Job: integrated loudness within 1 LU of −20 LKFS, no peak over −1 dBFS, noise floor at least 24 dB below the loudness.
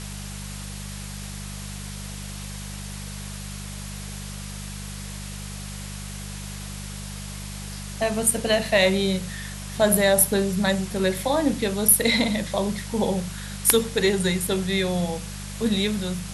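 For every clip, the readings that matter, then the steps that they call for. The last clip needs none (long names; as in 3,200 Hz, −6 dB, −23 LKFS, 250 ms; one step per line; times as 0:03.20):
mains hum 50 Hz; hum harmonics up to 200 Hz; level of the hum −33 dBFS; background noise floor −35 dBFS; target noise floor −47 dBFS; integrated loudness −22.5 LKFS; sample peak −1.5 dBFS; target loudness −20.0 LKFS
→ hum removal 50 Hz, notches 4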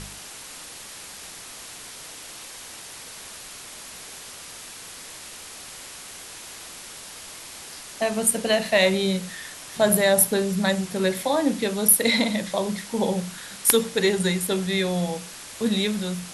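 mains hum none found; background noise floor −41 dBFS; target noise floor −47 dBFS
→ noise reduction from a noise print 6 dB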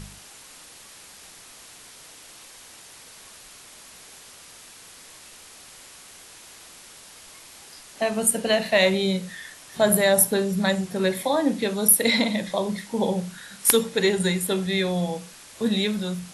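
background noise floor −47 dBFS; integrated loudness −22.0 LKFS; sample peak −1.5 dBFS; target loudness −20.0 LKFS
→ level +2 dB
brickwall limiter −1 dBFS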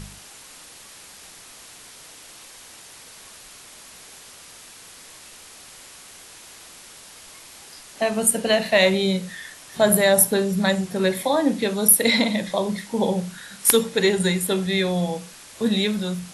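integrated loudness −20.0 LKFS; sample peak −1.0 dBFS; background noise floor −45 dBFS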